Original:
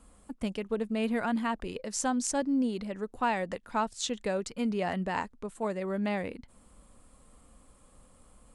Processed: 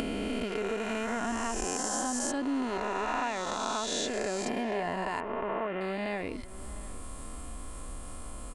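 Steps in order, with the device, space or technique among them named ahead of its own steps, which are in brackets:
peak hold with a rise ahead of every peak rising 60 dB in 3.00 s
0:05.20–0:05.81: elliptic low-pass filter 3,200 Hz
upward and downward compression (upward compression, threshold −36 dBFS; downward compressor 4 to 1, threshold −34 dBFS, peak gain reduction 11.5 dB)
comb filter 2.9 ms, depth 38%
slap from a distant wall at 120 metres, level −18 dB
level +3.5 dB

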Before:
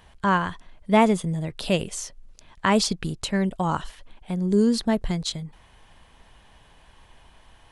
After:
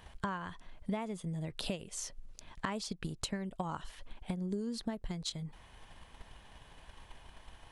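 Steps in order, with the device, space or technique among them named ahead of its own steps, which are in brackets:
drum-bus smash (transient designer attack +7 dB, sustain 0 dB; downward compressor 10 to 1, threshold −31 dBFS, peak gain reduction 22.5 dB; soft clipping −16 dBFS, distortion −29 dB)
level −3 dB

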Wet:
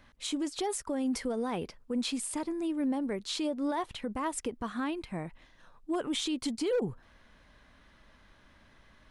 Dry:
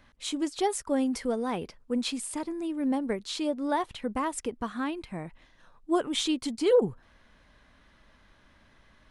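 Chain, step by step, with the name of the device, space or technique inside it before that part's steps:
clipper into limiter (hard clipping −17 dBFS, distortion −23 dB; brickwall limiter −24.5 dBFS, peak gain reduction 7.5 dB)

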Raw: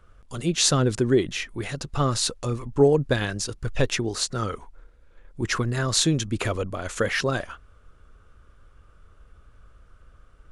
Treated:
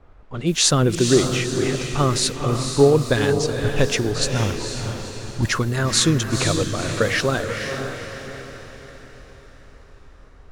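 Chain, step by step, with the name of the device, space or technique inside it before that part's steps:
0:04.32–0:05.49: comb filter 1.2 ms, depth 99%
cassette deck with a dynamic noise filter (white noise bed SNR 25 dB; low-pass that shuts in the quiet parts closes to 890 Hz, open at −21.5 dBFS)
feedback delay with all-pass diffusion 483 ms, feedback 48%, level −6 dB
level +3.5 dB

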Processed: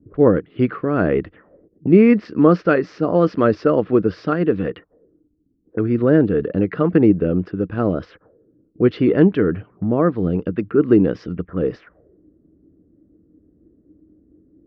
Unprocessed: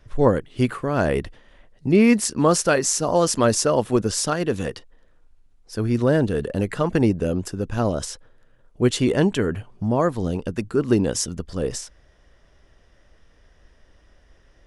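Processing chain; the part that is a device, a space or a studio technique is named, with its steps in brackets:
envelope filter bass rig (envelope-controlled low-pass 250–4,900 Hz up, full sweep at −23.5 dBFS; loudspeaker in its box 80–2,300 Hz, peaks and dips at 88 Hz +4 dB, 180 Hz +8 dB, 310 Hz +10 dB, 450 Hz +6 dB, 910 Hz −6 dB, 1,300 Hz +5 dB)
level −1 dB

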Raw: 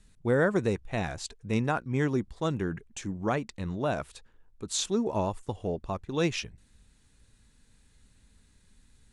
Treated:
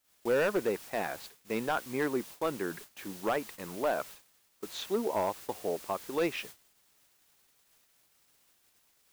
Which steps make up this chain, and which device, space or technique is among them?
aircraft radio (band-pass filter 370–2,400 Hz; hard clipping −24 dBFS, distortion −13 dB; white noise bed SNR 14 dB; noise gate −47 dBFS, range −28 dB)
level +1.5 dB

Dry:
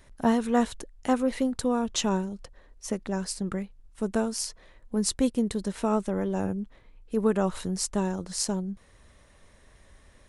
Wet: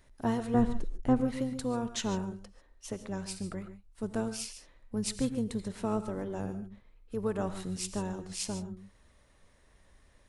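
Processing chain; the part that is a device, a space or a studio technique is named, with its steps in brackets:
0:00.54–0:01.21: spectral tilt −3.5 dB per octave
reverb whose tail is shaped and stops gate 170 ms rising, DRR 10.5 dB
octave pedal (pitch-shifted copies added −12 semitones −9 dB)
level −7.5 dB

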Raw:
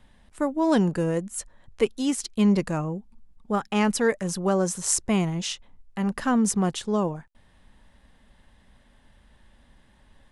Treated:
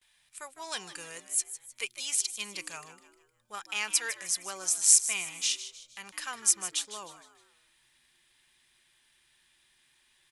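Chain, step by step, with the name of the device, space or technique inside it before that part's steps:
guitar amp tone stack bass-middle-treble 10-0-10
echo with shifted repeats 154 ms, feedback 40%, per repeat +110 Hz, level −13 dB
noise gate with hold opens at −57 dBFS
spectral tilt +4.5 dB per octave
inside a helmet (high-shelf EQ 5,800 Hz −7 dB; hollow resonant body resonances 360/2,400 Hz, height 11 dB, ringing for 35 ms)
level −3.5 dB

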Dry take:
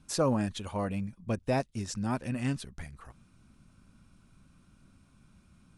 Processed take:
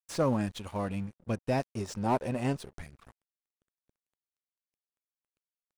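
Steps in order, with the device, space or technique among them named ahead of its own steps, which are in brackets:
0:01.69–0:02.79: flat-topped bell 610 Hz +10.5 dB
early transistor amplifier (dead-zone distortion −49.5 dBFS; slew-rate limiting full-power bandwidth 67 Hz)

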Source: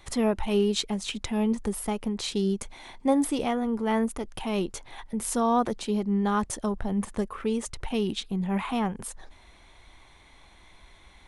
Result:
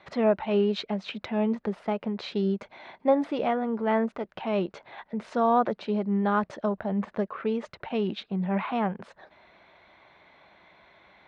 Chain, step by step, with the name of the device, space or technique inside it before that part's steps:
kitchen radio (loudspeaker in its box 170–3,700 Hz, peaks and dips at 180 Hz +3 dB, 270 Hz −4 dB, 610 Hz +8 dB, 1,500 Hz +4 dB, 3,200 Hz −5 dB)

